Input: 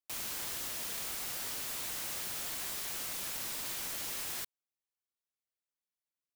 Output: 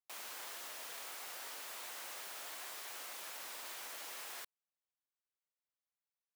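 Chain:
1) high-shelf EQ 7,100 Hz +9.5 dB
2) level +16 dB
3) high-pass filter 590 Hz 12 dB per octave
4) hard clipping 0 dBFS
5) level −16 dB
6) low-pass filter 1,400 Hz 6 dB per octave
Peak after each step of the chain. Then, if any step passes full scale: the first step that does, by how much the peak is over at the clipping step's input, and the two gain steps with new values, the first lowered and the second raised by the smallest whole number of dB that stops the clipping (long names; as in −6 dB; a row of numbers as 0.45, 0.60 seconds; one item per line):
−19.0, −3.0, −3.5, −3.5, −19.5, −34.0 dBFS
no step passes full scale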